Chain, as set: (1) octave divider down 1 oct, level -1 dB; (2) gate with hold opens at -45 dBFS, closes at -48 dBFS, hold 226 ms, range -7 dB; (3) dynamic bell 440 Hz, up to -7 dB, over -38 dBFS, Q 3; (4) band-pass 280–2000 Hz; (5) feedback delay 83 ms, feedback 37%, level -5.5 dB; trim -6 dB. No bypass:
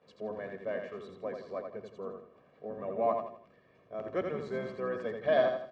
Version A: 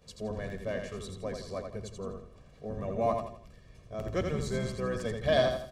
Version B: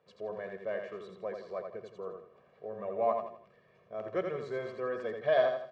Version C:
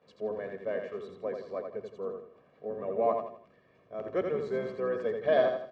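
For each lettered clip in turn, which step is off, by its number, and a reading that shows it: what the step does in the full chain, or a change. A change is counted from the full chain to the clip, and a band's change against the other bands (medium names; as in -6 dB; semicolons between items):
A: 4, 125 Hz band +11.5 dB; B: 1, 250 Hz band -3.5 dB; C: 3, momentary loudness spread change -2 LU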